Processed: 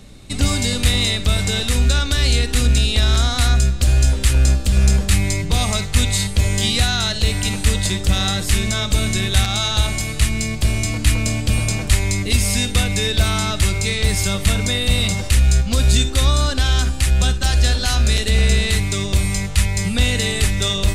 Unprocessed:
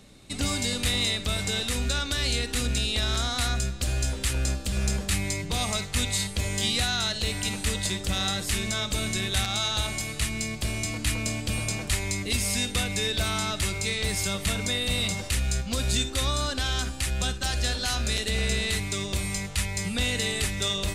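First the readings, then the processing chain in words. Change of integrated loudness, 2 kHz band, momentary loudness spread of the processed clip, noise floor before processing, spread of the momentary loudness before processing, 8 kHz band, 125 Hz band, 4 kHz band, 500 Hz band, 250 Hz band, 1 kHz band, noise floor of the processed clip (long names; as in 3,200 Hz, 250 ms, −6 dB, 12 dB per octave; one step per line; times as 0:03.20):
+9.0 dB, +6.5 dB, 3 LU, −36 dBFS, 4 LU, +6.5 dB, +13.0 dB, +6.5 dB, +7.0 dB, +8.5 dB, +6.5 dB, −25 dBFS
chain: low-shelf EQ 110 Hz +10 dB
level +6.5 dB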